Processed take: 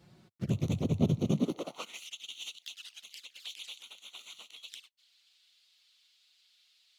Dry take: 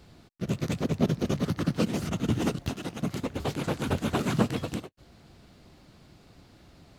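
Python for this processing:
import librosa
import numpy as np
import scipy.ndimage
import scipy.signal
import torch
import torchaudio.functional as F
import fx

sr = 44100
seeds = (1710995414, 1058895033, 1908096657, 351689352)

y = fx.env_flanger(x, sr, rest_ms=6.7, full_db=-27.0)
y = fx.filter_sweep_highpass(y, sr, from_hz=93.0, to_hz=3300.0, start_s=1.19, end_s=2.08, q=2.4)
y = fx.high_shelf_res(y, sr, hz=2200.0, db=-6.5, q=1.5, at=(3.79, 4.63))
y = F.gain(torch.from_numpy(y), -4.0).numpy()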